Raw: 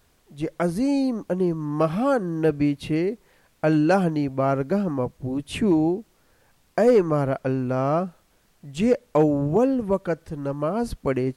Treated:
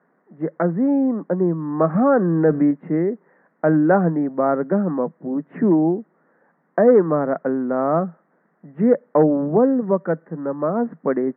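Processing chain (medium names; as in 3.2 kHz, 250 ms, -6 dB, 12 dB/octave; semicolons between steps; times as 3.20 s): Chebyshev band-pass 160–1900 Hz, order 5; distance through air 170 m; 1.95–2.71 s: level flattener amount 50%; trim +4.5 dB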